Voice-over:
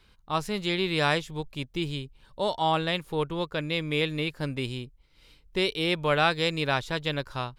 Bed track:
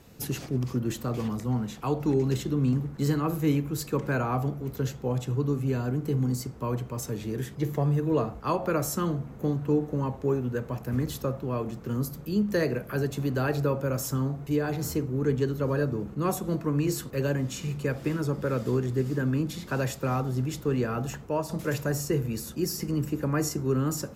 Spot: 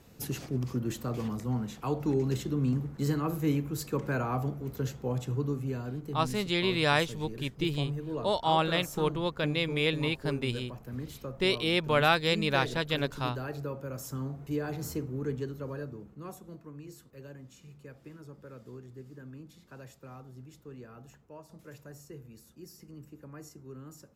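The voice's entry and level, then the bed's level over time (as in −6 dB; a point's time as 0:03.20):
5.85 s, −1.0 dB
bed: 0:05.36 −3.5 dB
0:06.16 −10.5 dB
0:13.90 −10.5 dB
0:14.45 −6 dB
0:15.07 −6 dB
0:16.76 −20 dB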